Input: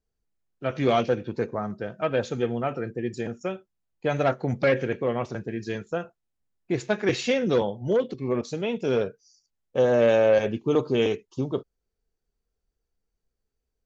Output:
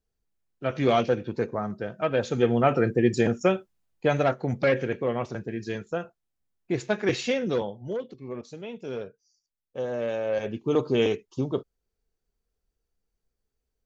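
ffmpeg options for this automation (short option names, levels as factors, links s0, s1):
-af "volume=8.41,afade=t=in:st=2.21:d=0.62:silence=0.375837,afade=t=out:st=3.5:d=0.79:silence=0.334965,afade=t=out:st=7.12:d=0.93:silence=0.354813,afade=t=in:st=10.25:d=0.62:silence=0.316228"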